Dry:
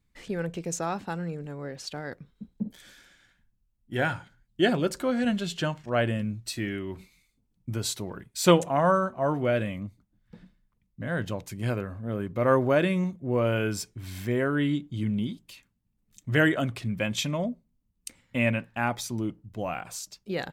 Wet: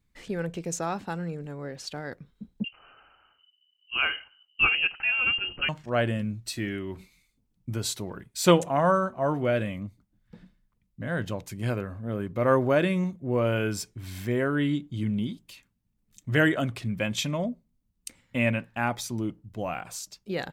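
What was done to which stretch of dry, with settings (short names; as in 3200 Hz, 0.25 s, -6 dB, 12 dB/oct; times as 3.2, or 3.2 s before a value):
2.64–5.69 inverted band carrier 3000 Hz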